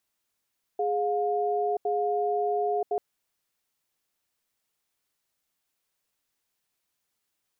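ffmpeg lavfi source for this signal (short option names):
-f lavfi -i "aevalsrc='0.0473*(sin(2*PI*415*t)+sin(2*PI*712*t))*clip(min(mod(t,1.06),0.98-mod(t,1.06))/0.005,0,1)':d=2.19:s=44100"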